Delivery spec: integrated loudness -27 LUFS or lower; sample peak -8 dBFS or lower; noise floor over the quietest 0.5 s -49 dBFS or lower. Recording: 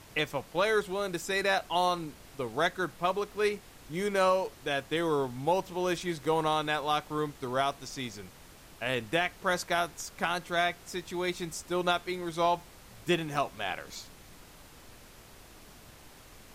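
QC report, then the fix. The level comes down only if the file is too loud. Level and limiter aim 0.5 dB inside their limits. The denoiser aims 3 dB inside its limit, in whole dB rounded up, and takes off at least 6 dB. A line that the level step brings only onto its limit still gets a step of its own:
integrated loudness -31.0 LUFS: OK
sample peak -15.0 dBFS: OK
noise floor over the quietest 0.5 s -52 dBFS: OK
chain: none

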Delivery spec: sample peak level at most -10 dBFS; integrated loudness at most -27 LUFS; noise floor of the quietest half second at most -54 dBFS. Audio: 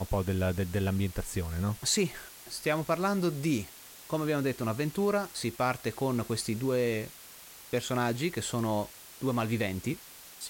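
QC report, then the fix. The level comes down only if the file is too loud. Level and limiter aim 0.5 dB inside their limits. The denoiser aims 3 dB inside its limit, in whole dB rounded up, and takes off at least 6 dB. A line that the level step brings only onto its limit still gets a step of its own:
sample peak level -14.5 dBFS: OK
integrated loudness -31.0 LUFS: OK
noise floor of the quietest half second -50 dBFS: fail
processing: denoiser 7 dB, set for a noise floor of -50 dBFS

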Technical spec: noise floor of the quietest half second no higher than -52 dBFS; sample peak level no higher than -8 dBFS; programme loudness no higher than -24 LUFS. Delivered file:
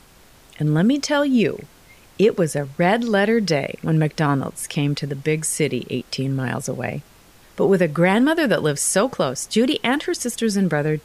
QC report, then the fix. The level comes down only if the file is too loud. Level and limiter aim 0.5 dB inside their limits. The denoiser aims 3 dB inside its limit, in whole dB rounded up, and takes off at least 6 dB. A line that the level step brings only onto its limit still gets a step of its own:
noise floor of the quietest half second -50 dBFS: fail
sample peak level -5.5 dBFS: fail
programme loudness -20.5 LUFS: fail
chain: gain -4 dB

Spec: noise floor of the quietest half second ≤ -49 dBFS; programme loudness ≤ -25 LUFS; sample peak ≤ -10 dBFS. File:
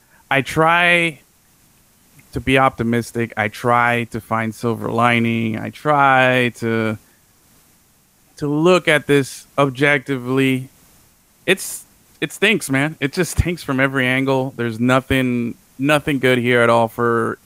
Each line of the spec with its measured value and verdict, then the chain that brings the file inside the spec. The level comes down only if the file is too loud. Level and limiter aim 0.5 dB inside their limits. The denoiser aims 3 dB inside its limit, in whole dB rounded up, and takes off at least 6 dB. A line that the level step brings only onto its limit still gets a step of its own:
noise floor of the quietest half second -55 dBFS: OK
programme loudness -17.5 LUFS: fail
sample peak -2.0 dBFS: fail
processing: gain -8 dB; limiter -10.5 dBFS

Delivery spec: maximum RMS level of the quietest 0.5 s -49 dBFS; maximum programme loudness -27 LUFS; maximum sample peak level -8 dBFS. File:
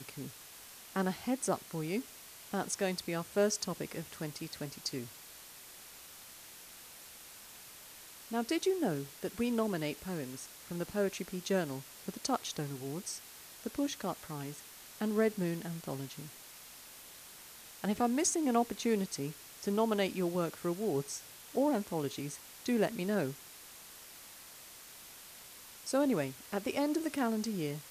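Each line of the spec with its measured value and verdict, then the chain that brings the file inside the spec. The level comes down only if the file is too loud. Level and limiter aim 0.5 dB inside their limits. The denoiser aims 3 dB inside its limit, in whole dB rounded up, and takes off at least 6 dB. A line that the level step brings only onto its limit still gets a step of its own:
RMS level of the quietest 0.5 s -52 dBFS: OK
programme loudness -35.5 LUFS: OK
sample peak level -17.5 dBFS: OK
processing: none

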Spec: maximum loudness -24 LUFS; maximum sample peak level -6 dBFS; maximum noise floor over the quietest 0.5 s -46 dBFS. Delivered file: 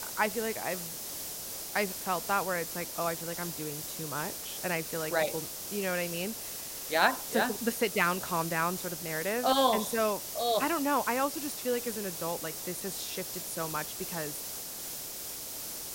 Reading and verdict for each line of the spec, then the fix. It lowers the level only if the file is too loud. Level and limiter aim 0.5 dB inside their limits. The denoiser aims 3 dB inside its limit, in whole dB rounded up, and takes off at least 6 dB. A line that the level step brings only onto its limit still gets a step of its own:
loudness -31.5 LUFS: OK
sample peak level -10.5 dBFS: OK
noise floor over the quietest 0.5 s -40 dBFS: fail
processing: denoiser 9 dB, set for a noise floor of -40 dBFS

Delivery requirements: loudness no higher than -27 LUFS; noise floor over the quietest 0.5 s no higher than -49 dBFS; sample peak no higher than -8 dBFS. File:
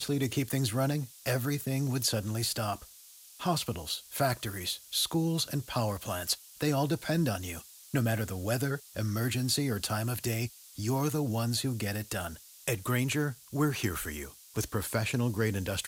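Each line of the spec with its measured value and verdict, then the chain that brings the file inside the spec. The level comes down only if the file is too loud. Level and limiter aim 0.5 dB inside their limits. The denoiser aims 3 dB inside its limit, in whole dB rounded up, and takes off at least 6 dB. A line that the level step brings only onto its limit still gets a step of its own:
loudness -31.5 LUFS: OK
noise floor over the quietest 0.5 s -54 dBFS: OK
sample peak -16.0 dBFS: OK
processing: none

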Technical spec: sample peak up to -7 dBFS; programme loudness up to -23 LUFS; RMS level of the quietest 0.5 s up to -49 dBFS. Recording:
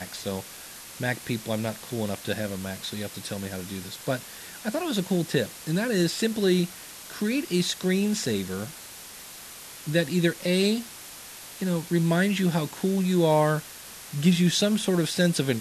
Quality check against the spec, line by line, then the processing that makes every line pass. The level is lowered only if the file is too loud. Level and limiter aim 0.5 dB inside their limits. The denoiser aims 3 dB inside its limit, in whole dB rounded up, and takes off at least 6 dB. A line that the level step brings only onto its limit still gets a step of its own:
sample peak -9.5 dBFS: OK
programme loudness -26.5 LUFS: OK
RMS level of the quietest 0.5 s -43 dBFS: fail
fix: denoiser 9 dB, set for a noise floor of -43 dBFS

